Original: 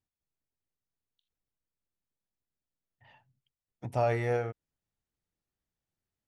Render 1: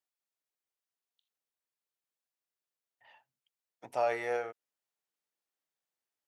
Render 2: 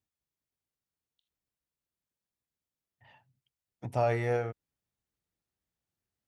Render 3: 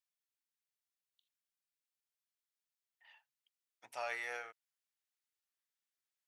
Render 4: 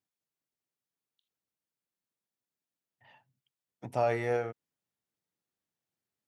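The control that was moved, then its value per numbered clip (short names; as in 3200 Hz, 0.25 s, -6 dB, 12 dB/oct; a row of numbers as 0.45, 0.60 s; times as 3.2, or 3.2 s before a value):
HPF, cutoff: 500, 43, 1500, 160 Hz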